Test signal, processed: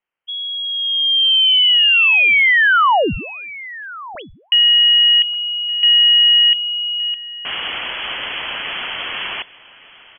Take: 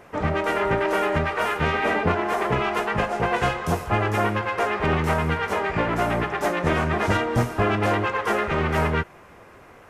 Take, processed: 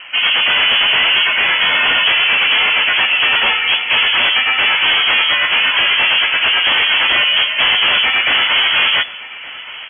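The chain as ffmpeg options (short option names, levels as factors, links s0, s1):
-filter_complex "[0:a]acrossover=split=200[s0][s1];[s1]aeval=exprs='0.376*sin(PI/2*3.98*val(0)/0.376)':c=same[s2];[s0][s2]amix=inputs=2:normalize=0,aecho=1:1:1168:0.112,lowpass=f=2900:t=q:w=0.5098,lowpass=f=2900:t=q:w=0.6013,lowpass=f=2900:t=q:w=0.9,lowpass=f=2900:t=q:w=2.563,afreqshift=-3400,volume=0.891"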